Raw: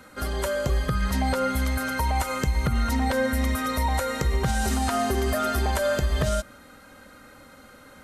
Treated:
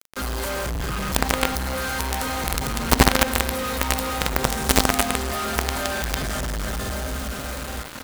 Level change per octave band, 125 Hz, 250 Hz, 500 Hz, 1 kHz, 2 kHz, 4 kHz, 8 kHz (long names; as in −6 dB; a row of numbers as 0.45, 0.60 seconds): −1.0, +1.5, 0.0, +2.5, +4.5, +8.0, +8.0 decibels